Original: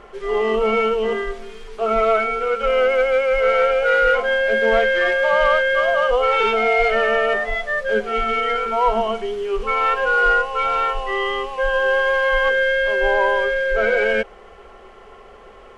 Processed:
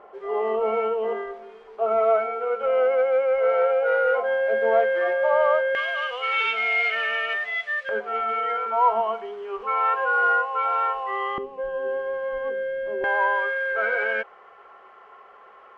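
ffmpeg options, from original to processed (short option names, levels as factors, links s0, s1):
-af "asetnsamples=n=441:p=0,asendcmd='5.75 bandpass f 2500;7.89 bandpass f 960;11.38 bandpass f 280;13.04 bandpass f 1200',bandpass=f=720:t=q:w=1.5:csg=0"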